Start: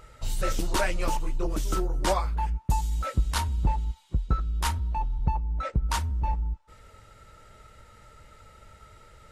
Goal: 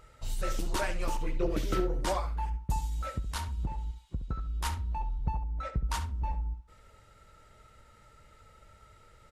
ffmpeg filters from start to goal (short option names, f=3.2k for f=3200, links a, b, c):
-filter_complex "[0:a]asettb=1/sr,asplit=3[a][b][c];[a]atrim=end=1.214[d];[b]atrim=start=1.21:end=2.01,asetpts=PTS-STARTPTS,afade=t=in:d=0.004:c=qsin,afade=t=out:st=0.796:d=0.004:c=qsin,equalizer=f=125:t=o:w=1:g=7,equalizer=f=250:t=o:w=1:g=3,equalizer=f=500:t=o:w=1:g=9,equalizer=f=1k:t=o:w=1:g=-4,equalizer=f=2k:t=o:w=1:g=11,equalizer=f=4k:t=o:w=1:g=4,equalizer=f=8k:t=o:w=1:g=-6[e];[c]atrim=start=2.006[f];[d][e]acrossfade=d=0.004:c1=hsin:c2=qsin[g];[g][f]acrossfade=d=0.004:c1=qsin:c2=hsin,asettb=1/sr,asplit=3[h][i][j];[h]atrim=end=3.134[k];[i]atrim=start=3.13:end=4.5,asetpts=PTS-STARTPTS,afade=t=in:d=0.004:c=qsin,afade=t=out:st=1.366:d=0.004:c=qsin,acompressor=threshold=-24dB:ratio=6[l];[j]atrim=start=4.496[m];[k][l]acrossfade=d=0.004:c1=hsin:c2=qsin[n];[n][m]acrossfade=d=0.004:c1=qsin:c2=hsin,asplit=2[o][p];[p]adelay=69,lowpass=f=4k:p=1,volume=-10dB,asplit=2[q][r];[r]adelay=69,lowpass=f=4k:p=1,volume=0.16[s];[o][q][s]amix=inputs=3:normalize=0,volume=-6dB"